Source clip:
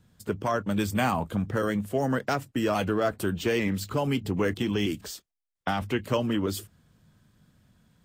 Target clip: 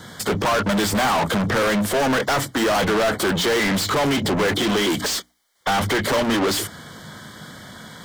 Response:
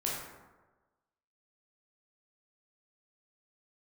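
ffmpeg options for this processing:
-filter_complex "[0:a]asuperstop=centerf=2600:order=20:qfactor=4.2,asplit=2[s0][s1];[s1]highpass=f=720:p=1,volume=89.1,asoftclip=type=tanh:threshold=0.224[s2];[s0][s2]amix=inputs=2:normalize=0,lowpass=f=4800:p=1,volume=0.501,bandreject=f=60:t=h:w=6,bandreject=f=120:t=h:w=6,bandreject=f=180:t=h:w=6,bandreject=f=240:t=h:w=6,bandreject=f=300:t=h:w=6"

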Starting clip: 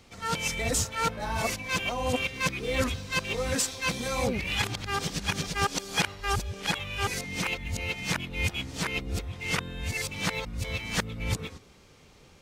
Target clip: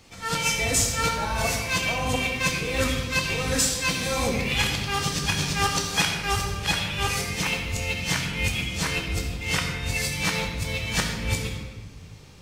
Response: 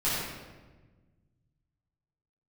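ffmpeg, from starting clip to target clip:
-filter_complex "[0:a]asplit=2[s0][s1];[1:a]atrim=start_sample=2205,highshelf=f=2900:g=10.5[s2];[s1][s2]afir=irnorm=-1:irlink=0,volume=0.237[s3];[s0][s3]amix=inputs=2:normalize=0"

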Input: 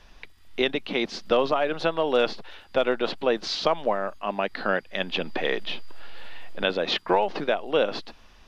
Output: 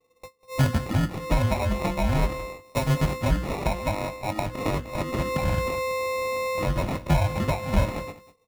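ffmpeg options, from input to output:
-filter_complex "[0:a]afftfilt=real='real(if(between(b,1,1008),(2*floor((b-1)/24)+1)*24-b,b),0)':imag='imag(if(between(b,1,1008),(2*floor((b-1)/24)+1)*24-b,b),0)*if(between(b,1,1008),-1,1)':win_size=2048:overlap=0.75,highpass=54,bandreject=f=60:t=h:w=6,bandreject=f=120:t=h:w=6,bandreject=f=180:t=h:w=6,bandreject=f=240:t=h:w=6,bandreject=f=300:t=h:w=6,bandreject=f=360:t=h:w=6,agate=range=0.0891:threshold=0.01:ratio=16:detection=peak,lowshelf=f=360:g=8.5,acrossover=split=180[s0][s1];[s1]acompressor=threshold=0.0631:ratio=10[s2];[s0][s2]amix=inputs=2:normalize=0,acrusher=samples=28:mix=1:aa=0.000001,asplit=2[s3][s4];[s4]adelay=20,volume=0.299[s5];[s3][s5]amix=inputs=2:normalize=0,asplit=2[s6][s7];[s7]aecho=0:1:196:0.133[s8];[s6][s8]amix=inputs=2:normalize=0,adynamicequalizer=threshold=0.00447:dfrequency=3800:dqfactor=0.7:tfrequency=3800:tqfactor=0.7:attack=5:release=100:ratio=0.375:range=3.5:mode=cutabove:tftype=highshelf"

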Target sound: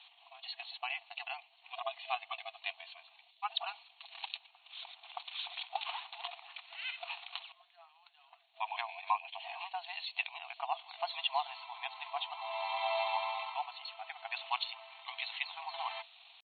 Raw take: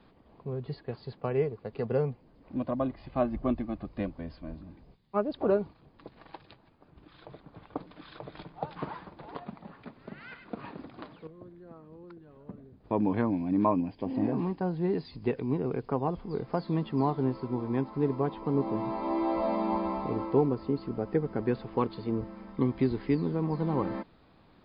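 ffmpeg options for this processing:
-af "highshelf=f=2100:t=q:w=3:g=10,atempo=1.5,afftfilt=real='re*between(b*sr/4096,660,4400)':imag='im*between(b*sr/4096,660,4400)':win_size=4096:overlap=0.75,volume=1.19"

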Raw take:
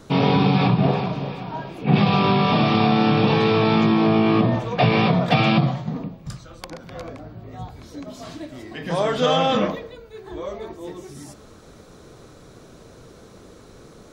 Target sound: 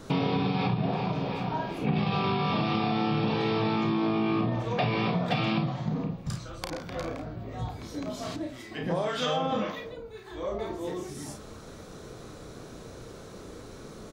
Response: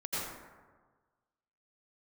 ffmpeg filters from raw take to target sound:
-filter_complex "[0:a]aecho=1:1:33|52:0.501|0.355,asettb=1/sr,asplit=3[s0][s1][s2];[s0]atrim=end=8.364[s3];[s1]atrim=start=8.36:end=10.59,asetpts=PTS-STARTPTS,afade=t=in:d=0.004:c=qsin,afade=t=out:st=2.226:d=0.004:c=qsin,acrossover=split=1200[s4][s5];[s4]aeval=exprs='val(0)*(1-0.7/2+0.7/2*cos(2*PI*1.8*n/s))':c=same[s6];[s5]aeval=exprs='val(0)*(1-0.7/2-0.7/2*cos(2*PI*1.8*n/s))':c=same[s7];[s6][s7]amix=inputs=2:normalize=0[s8];[s2]atrim=start=10.586[s9];[s3][s8]acrossfade=d=0.004:c1=hsin:c2=qsin[s10];[s10][s9]acrossfade=d=0.004:c1=qsin:c2=hsin,acompressor=threshold=0.0501:ratio=4"

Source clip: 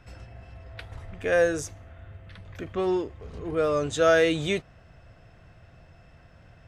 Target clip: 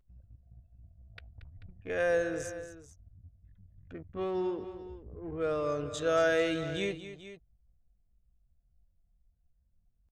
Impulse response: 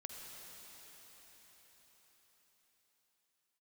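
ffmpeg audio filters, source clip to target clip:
-af "anlmdn=3.98,atempo=0.66,aecho=1:1:230|438:0.237|0.188,volume=0.422"

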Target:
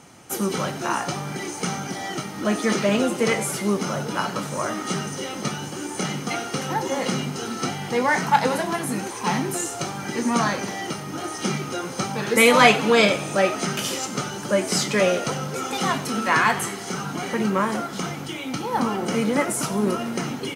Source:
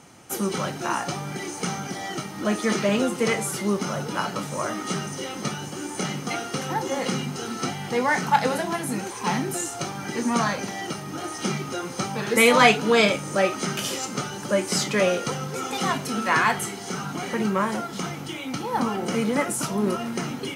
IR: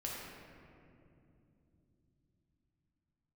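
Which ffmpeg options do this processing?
-filter_complex "[0:a]asplit=7[s0][s1][s2][s3][s4][s5][s6];[s1]adelay=93,afreqshift=65,volume=0.15[s7];[s2]adelay=186,afreqshift=130,volume=0.0902[s8];[s3]adelay=279,afreqshift=195,volume=0.0537[s9];[s4]adelay=372,afreqshift=260,volume=0.0324[s10];[s5]adelay=465,afreqshift=325,volume=0.0195[s11];[s6]adelay=558,afreqshift=390,volume=0.0116[s12];[s0][s7][s8][s9][s10][s11][s12]amix=inputs=7:normalize=0,volume=1.19"

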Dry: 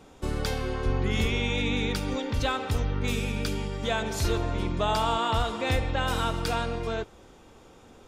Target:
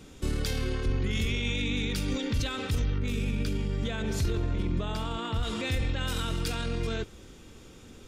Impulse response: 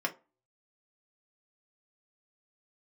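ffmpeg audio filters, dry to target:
-filter_complex "[0:a]asettb=1/sr,asplit=3[s0][s1][s2];[s0]atrim=end=2.984[s3];[s1]atrim=start=2.98:end=5.43,asetpts=PTS-STARTPTS,afade=t=in:d=0.004:c=qsin,afade=t=out:st=2.446:d=0.004:c=qsin,highshelf=f=2500:g=-10[s4];[s2]atrim=start=5.426[s5];[s3][s4]acrossfade=d=0.004:c1=hsin:c2=qsin[s6];[s6][s5]acrossfade=d=0.004:c1=qsin:c2=hsin,alimiter=level_in=1.12:limit=0.0631:level=0:latency=1:release=28,volume=0.891,equalizer=f=800:w=0.87:g=-13.5,volume=2"

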